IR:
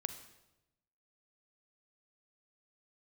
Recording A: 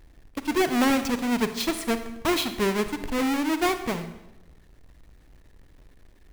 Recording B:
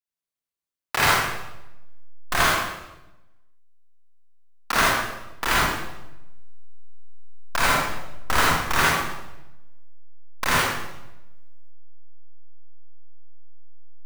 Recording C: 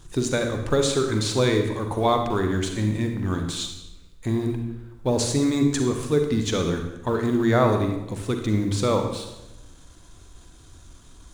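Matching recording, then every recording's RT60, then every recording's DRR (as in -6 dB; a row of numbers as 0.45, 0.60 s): A; 0.95, 0.95, 0.95 s; 9.5, -5.5, 4.5 dB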